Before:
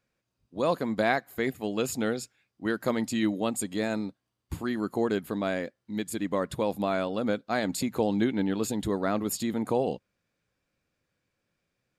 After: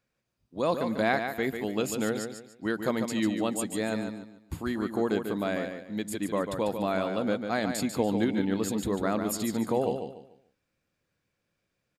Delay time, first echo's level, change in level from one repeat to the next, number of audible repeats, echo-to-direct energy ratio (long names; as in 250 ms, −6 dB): 145 ms, −7.0 dB, −10.5 dB, 3, −6.5 dB